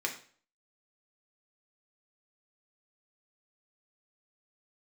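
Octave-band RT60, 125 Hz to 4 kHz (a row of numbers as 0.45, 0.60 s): 0.50, 0.45, 0.45, 0.45, 0.45, 0.40 s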